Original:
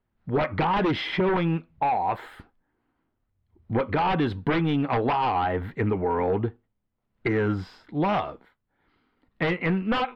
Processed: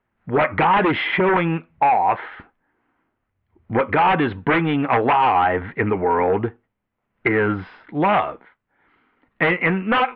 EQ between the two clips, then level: LPF 2500 Hz 24 dB/oct; tilt +2.5 dB/oct; +8.5 dB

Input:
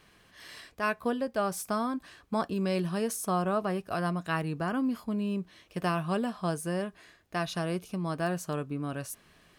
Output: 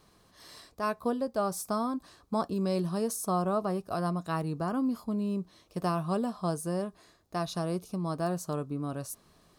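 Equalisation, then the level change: band shelf 2200 Hz -9.5 dB 1.3 oct; 0.0 dB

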